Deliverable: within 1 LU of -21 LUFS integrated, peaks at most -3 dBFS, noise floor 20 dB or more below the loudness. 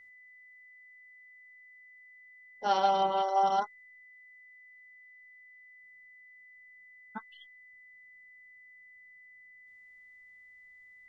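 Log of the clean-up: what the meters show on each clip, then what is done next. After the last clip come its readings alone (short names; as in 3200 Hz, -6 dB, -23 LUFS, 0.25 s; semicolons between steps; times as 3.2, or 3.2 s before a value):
steady tone 2000 Hz; tone level -53 dBFS; loudness -29.5 LUFS; peak -13.0 dBFS; loudness target -21.0 LUFS
-> notch 2000 Hz, Q 30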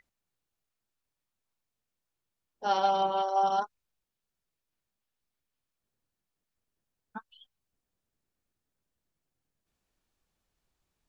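steady tone none; loudness -28.5 LUFS; peak -13.0 dBFS; loudness target -21.0 LUFS
-> gain +7.5 dB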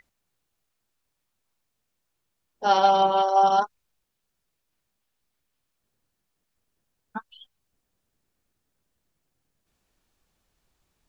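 loudness -21.0 LUFS; peak -5.5 dBFS; noise floor -79 dBFS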